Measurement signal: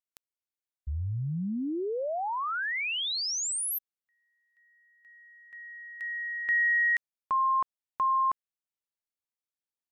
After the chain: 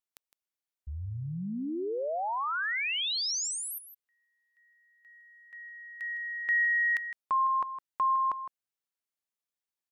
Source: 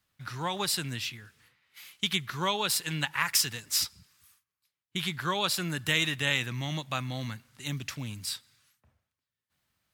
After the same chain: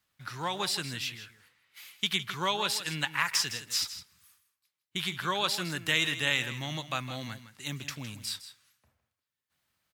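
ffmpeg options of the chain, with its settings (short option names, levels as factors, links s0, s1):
-filter_complex "[0:a]acrossover=split=7000[s0][s1];[s1]acompressor=threshold=0.0112:ratio=4:attack=1:release=60[s2];[s0][s2]amix=inputs=2:normalize=0,lowshelf=f=240:g=-6,aecho=1:1:160:0.237"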